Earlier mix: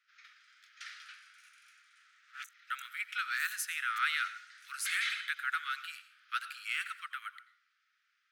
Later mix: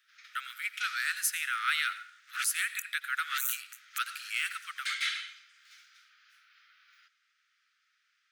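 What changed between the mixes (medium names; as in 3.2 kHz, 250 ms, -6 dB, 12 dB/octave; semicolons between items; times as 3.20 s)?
speech: entry -2.35 s; second sound +7.5 dB; master: add tilt EQ +2.5 dB/octave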